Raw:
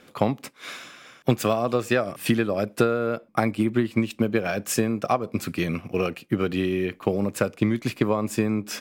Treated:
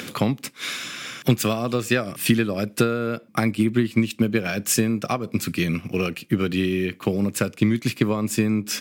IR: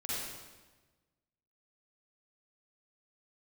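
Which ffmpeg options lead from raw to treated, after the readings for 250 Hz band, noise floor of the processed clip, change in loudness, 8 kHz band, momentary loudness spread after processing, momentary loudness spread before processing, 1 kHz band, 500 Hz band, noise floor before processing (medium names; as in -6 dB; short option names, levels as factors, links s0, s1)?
+3.0 dB, -48 dBFS, +2.0 dB, +6.5 dB, 5 LU, 5 LU, -2.0 dB, -1.5 dB, -54 dBFS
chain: -af "highpass=100,equalizer=f=720:w=0.61:g=-11,acompressor=mode=upward:threshold=0.0355:ratio=2.5,volume=2.11"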